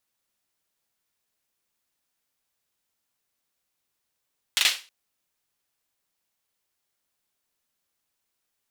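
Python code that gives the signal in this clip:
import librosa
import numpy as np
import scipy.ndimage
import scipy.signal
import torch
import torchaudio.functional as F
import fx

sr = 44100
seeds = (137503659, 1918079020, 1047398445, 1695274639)

y = fx.drum_clap(sr, seeds[0], length_s=0.32, bursts=3, spacing_ms=40, hz=3100.0, decay_s=0.32)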